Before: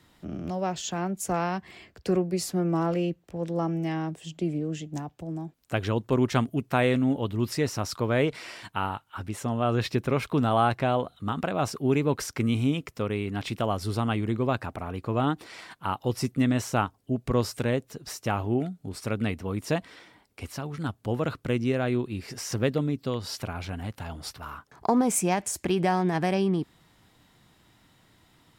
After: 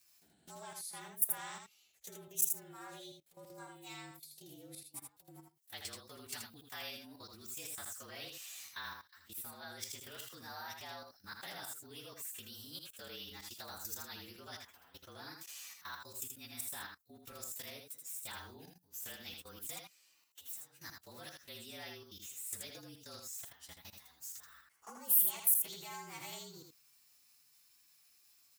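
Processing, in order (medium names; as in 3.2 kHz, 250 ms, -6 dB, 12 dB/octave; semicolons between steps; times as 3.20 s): frequency axis rescaled in octaves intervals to 112%; treble shelf 5.9 kHz +4.5 dB; level held to a coarse grid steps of 17 dB; pre-emphasis filter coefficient 0.97; on a send: delay 80 ms -5 dB; on the sum: trim +4.5 dB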